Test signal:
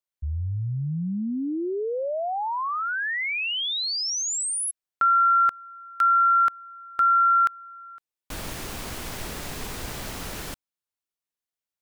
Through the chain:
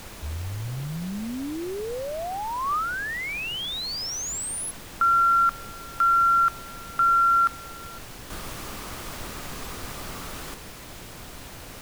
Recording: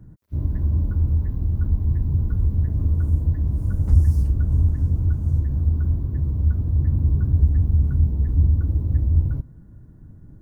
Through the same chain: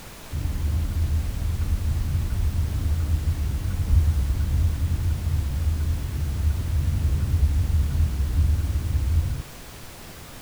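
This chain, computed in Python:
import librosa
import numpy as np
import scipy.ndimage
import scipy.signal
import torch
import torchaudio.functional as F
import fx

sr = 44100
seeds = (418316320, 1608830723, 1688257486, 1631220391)

y = fx.peak_eq(x, sr, hz=1200.0, db=7.5, octaves=0.35)
y = fx.dmg_noise_colour(y, sr, seeds[0], colour='pink', level_db=-37.0)
y = y * librosa.db_to_amplitude(-4.0)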